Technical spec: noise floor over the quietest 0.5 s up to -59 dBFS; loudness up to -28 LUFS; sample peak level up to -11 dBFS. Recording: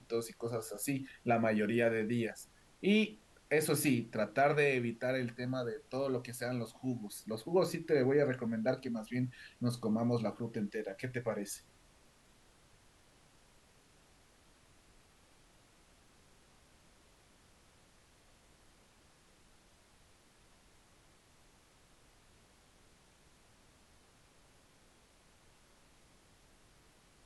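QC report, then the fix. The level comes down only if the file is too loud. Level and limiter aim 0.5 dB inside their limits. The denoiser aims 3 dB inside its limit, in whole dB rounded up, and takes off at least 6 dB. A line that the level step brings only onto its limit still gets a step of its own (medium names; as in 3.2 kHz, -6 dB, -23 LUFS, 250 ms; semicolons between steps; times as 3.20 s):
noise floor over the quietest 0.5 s -65 dBFS: pass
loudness -35.0 LUFS: pass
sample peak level -17.5 dBFS: pass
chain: none needed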